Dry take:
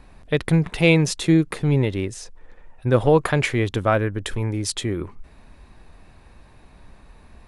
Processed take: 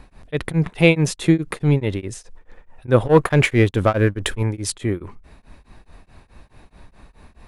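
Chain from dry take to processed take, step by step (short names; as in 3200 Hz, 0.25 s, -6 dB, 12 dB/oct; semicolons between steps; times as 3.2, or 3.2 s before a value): dynamic EQ 5200 Hz, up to -5 dB, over -41 dBFS, Q 1.2; 3.05–4.43 sample leveller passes 1; beating tremolo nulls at 4.7 Hz; gain +4 dB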